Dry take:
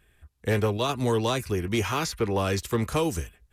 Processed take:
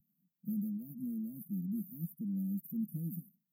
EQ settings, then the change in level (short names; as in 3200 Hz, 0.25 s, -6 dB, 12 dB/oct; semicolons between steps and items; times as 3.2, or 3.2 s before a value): brick-wall FIR high-pass 170 Hz; inverse Chebyshev band-stop 870–4800 Hz, stop band 80 dB; fixed phaser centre 1500 Hz, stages 6; +9.0 dB